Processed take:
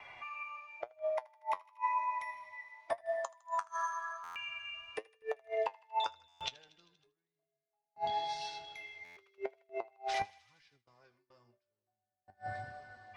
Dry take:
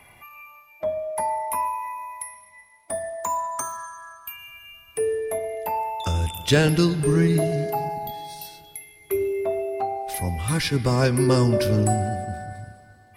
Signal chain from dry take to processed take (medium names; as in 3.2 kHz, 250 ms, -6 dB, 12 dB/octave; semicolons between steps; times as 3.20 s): Chebyshev low-pass 6.8 kHz, order 3; bass shelf 110 Hz +2.5 dB; saturation -9 dBFS, distortion -23 dB; inverted gate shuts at -21 dBFS, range -40 dB; three-band isolator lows -16 dB, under 510 Hz, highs -17 dB, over 5.4 kHz; thinning echo 79 ms, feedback 76%, high-pass 1.1 kHz, level -21 dB; gate with hold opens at -58 dBFS; flange 0.94 Hz, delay 6.7 ms, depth 4.4 ms, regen +55%; buffer glitch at 4.23/6.28/9.04 s, samples 512, times 10; trim +5.5 dB